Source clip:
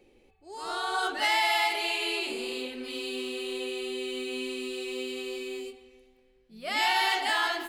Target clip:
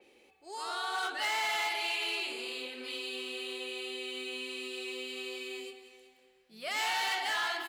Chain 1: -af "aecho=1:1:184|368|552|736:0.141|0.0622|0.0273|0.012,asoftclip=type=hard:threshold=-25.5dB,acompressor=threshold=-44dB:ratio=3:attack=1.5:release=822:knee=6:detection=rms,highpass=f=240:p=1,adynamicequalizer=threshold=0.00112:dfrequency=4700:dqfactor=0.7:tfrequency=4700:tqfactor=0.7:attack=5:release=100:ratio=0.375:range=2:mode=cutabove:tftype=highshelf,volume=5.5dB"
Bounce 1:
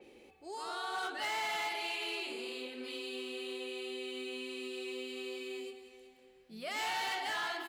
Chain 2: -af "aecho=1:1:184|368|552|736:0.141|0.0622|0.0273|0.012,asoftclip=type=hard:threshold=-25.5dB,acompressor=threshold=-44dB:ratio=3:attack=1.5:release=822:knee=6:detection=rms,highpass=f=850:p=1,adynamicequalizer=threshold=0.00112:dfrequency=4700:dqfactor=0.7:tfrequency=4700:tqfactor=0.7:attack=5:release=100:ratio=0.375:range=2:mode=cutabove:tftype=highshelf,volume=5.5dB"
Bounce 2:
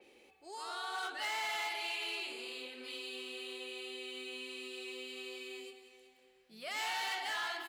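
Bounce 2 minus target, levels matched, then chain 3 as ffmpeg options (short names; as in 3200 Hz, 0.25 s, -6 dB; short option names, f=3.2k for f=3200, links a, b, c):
compressor: peak gain reduction +5.5 dB
-af "aecho=1:1:184|368|552|736:0.141|0.0622|0.0273|0.012,asoftclip=type=hard:threshold=-25.5dB,acompressor=threshold=-36dB:ratio=3:attack=1.5:release=822:knee=6:detection=rms,highpass=f=850:p=1,adynamicequalizer=threshold=0.00112:dfrequency=4700:dqfactor=0.7:tfrequency=4700:tqfactor=0.7:attack=5:release=100:ratio=0.375:range=2:mode=cutabove:tftype=highshelf,volume=5.5dB"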